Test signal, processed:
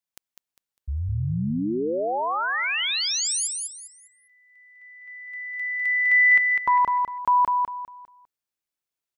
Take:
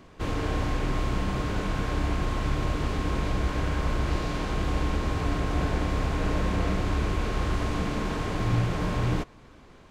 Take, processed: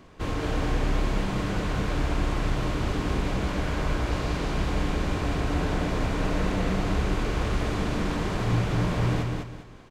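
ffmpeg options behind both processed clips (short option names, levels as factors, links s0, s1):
-af "aecho=1:1:201|402|603|804:0.631|0.189|0.0568|0.017"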